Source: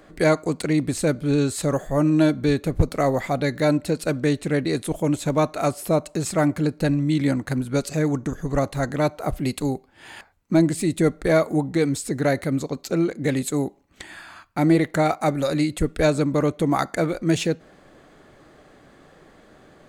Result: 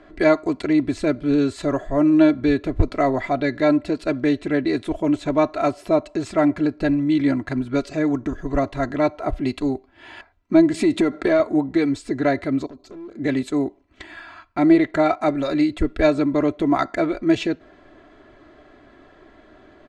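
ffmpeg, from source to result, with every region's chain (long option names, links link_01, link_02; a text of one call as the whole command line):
ffmpeg -i in.wav -filter_complex "[0:a]asettb=1/sr,asplit=3[link_01][link_02][link_03];[link_01]atrim=end=10.744[link_04];[link_02]atrim=start=10.74:end=11.4,asetpts=PTS-STARTPTS,afade=type=in:duration=0.004:curve=qsin,afade=type=out:start_time=0.656:duration=0.004:curve=qsin,highpass=150,acompressor=threshold=-24dB:ratio=6:attack=3.2:release=140:knee=1:detection=peak,aeval=exprs='0.316*sin(PI/2*1.78*val(0)/0.316)':channel_layout=same[link_05];[link_03]atrim=start=11.396[link_06];[link_04][link_05]acrossfade=duration=0.004:curve1=hsin:curve2=qsin[link_07];[link_07][link_06]acrossfade=duration=0.004:curve1=qsin:curve2=hsin,asettb=1/sr,asplit=3[link_08][link_09][link_10];[link_08]atrim=end=12.664[link_11];[link_09]atrim=start=12.66:end=13.14,asetpts=PTS-STARTPTS,afade=type=in:duration=0.004:curve=qsin,afade=type=out:start_time=0.476:duration=0.004:curve=qsin,equalizer=frequency=2000:width=0.79:gain=-11,acompressor=threshold=-34dB:ratio=8:attack=3.2:release=140:knee=1:detection=peak,asoftclip=type=hard:threshold=-36dB[link_12];[link_10]atrim=start=13.136[link_13];[link_11][link_12]acrossfade=duration=0.004:curve1=hsin:curve2=qsin[link_14];[link_14][link_13]acrossfade=duration=0.004:curve1=qsin:curve2=hsin,lowpass=3700,aecho=1:1:3:0.66" out.wav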